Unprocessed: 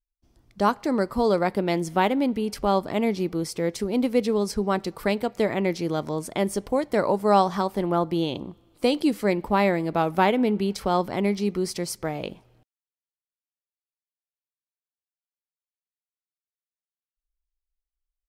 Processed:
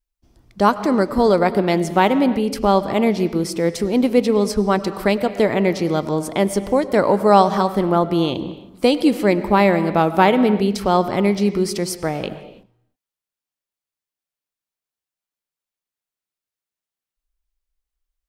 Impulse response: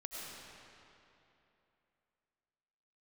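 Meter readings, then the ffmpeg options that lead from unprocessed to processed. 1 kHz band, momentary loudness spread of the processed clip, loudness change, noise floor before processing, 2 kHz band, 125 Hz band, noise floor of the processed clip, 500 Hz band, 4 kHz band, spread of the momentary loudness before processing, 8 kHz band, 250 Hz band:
+6.5 dB, 7 LU, +6.5 dB, under -85 dBFS, +6.5 dB, +6.5 dB, under -85 dBFS, +6.5 dB, +6.0 dB, 7 LU, +5.5 dB, +7.0 dB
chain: -filter_complex "[0:a]asplit=2[a][b];[b]lowpass=f=3.6k:p=1[c];[1:a]atrim=start_sample=2205,afade=t=out:st=0.38:d=0.01,atrim=end_sample=17199[d];[c][d]afir=irnorm=-1:irlink=0,volume=-6.5dB[e];[a][e]amix=inputs=2:normalize=0,volume=4.5dB"

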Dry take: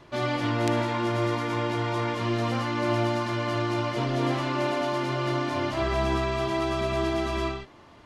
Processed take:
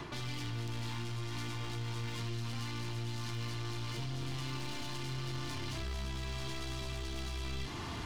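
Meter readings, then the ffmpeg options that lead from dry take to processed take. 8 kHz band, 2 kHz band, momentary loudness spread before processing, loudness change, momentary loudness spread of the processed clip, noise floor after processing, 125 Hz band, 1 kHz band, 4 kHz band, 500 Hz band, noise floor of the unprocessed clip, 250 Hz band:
-3.0 dB, -13.0 dB, 2 LU, -12.5 dB, 1 LU, -41 dBFS, -7.5 dB, -18.0 dB, -6.5 dB, -21.0 dB, -51 dBFS, -16.0 dB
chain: -filter_complex "[0:a]areverse,acompressor=threshold=-41dB:ratio=6,areverse,aeval=exprs='clip(val(0),-1,0.00447)':c=same,acrossover=split=160|3000[a][b][c];[b]acompressor=threshold=-58dB:ratio=6[d];[a][d][c]amix=inputs=3:normalize=0,equalizer=f=570:w=5.5:g=-13,alimiter=level_in=23dB:limit=-24dB:level=0:latency=1:release=13,volume=-23dB,aeval=exprs='0.00447*(cos(1*acos(clip(val(0)/0.00447,-1,1)))-cos(1*PI/2))+0.000282*(cos(5*acos(clip(val(0)/0.00447,-1,1)))-cos(5*PI/2))':c=same,volume=16dB"

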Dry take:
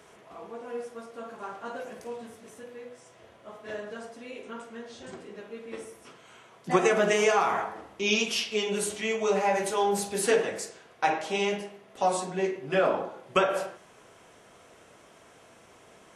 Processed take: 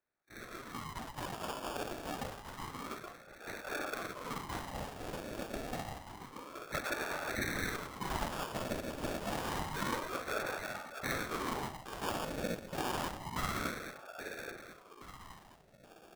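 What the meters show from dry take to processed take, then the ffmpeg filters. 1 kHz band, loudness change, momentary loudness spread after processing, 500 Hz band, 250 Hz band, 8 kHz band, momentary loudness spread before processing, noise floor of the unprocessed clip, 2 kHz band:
-9.0 dB, -12.0 dB, 12 LU, -14.0 dB, -7.0 dB, -10.0 dB, 20 LU, -56 dBFS, -7.0 dB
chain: -filter_complex "[0:a]areverse,acompressor=threshold=-37dB:ratio=6,areverse,aresample=8000,aresample=44100,bandreject=f=60:t=h:w=6,bandreject=f=120:t=h:w=6,bandreject=f=180:t=h:w=6,bandreject=f=240:t=h:w=6,bandreject=f=300:t=h:w=6,bandreject=f=360:t=h:w=6,bandreject=f=420:t=h:w=6,bandreject=f=480:t=h:w=6,agate=range=-31dB:threshold=-49dB:ratio=16:detection=peak,dynaudnorm=f=200:g=9:m=6dB,afftfilt=real='hypot(re,im)*cos(2*PI*random(0))':imag='hypot(re,im)*sin(2*PI*random(1))':win_size=512:overlap=0.75,asplit=2[a][b];[b]adelay=824,lowpass=f=1.1k:p=1,volume=-6.5dB,asplit=2[c][d];[d]adelay=824,lowpass=f=1.1k:p=1,volume=0.52,asplit=2[e][f];[f]adelay=824,lowpass=f=1.1k:p=1,volume=0.52,asplit=2[g][h];[h]adelay=824,lowpass=f=1.1k:p=1,volume=0.52,asplit=2[i][j];[j]adelay=824,lowpass=f=1.1k:p=1,volume=0.52,asplit=2[k][l];[l]adelay=824,lowpass=f=1.1k:p=1,volume=0.52[m];[c][e][g][i][k][m]amix=inputs=6:normalize=0[n];[a][n]amix=inputs=2:normalize=0,acrusher=samples=22:mix=1:aa=0.000001,aeval=exprs='val(0)*sin(2*PI*600*n/s+600*0.75/0.28*sin(2*PI*0.28*n/s))':c=same,volume=4.5dB"

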